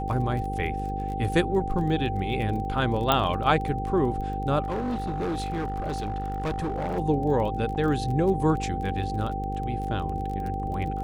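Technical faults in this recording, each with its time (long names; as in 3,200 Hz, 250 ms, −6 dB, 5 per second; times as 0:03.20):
mains buzz 50 Hz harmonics 10 −32 dBFS
surface crackle 24 per second −33 dBFS
whistle 780 Hz −31 dBFS
0:03.12: click −7 dBFS
0:04.62–0:06.99: clipping −25 dBFS
0:07.75–0:07.76: drop-out 8.1 ms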